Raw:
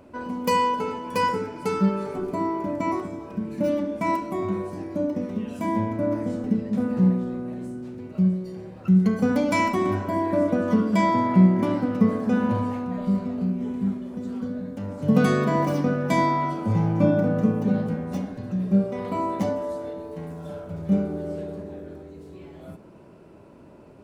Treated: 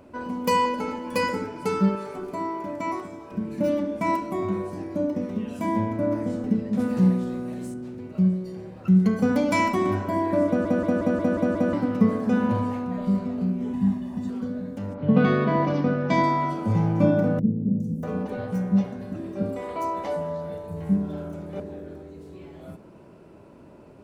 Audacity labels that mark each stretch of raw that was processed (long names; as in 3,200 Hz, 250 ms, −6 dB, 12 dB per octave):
0.650000	1.450000	comb filter 3.6 ms, depth 53%
1.950000	3.320000	low-shelf EQ 480 Hz −8 dB
6.790000	7.740000	high-shelf EQ 2,900 Hz +11 dB
10.470000	10.470000	stutter in place 0.18 s, 7 plays
13.730000	14.300000	comb filter 1.1 ms, depth 88%
14.930000	16.220000	low-pass filter 3,200 Hz → 5,800 Hz 24 dB per octave
17.390000	21.600000	three-band delay without the direct sound lows, highs, mids 410/640 ms, splits 350/5,600 Hz